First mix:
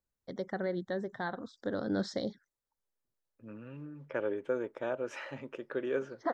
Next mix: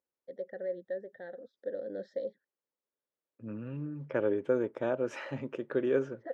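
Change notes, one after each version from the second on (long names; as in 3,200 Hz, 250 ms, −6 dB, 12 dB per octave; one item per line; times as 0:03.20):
first voice: add formant filter e
master: add low-shelf EQ 450 Hz +9 dB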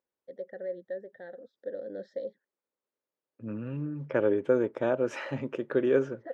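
second voice +4.0 dB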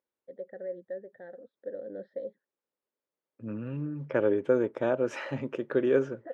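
first voice: add high-frequency loss of the air 430 metres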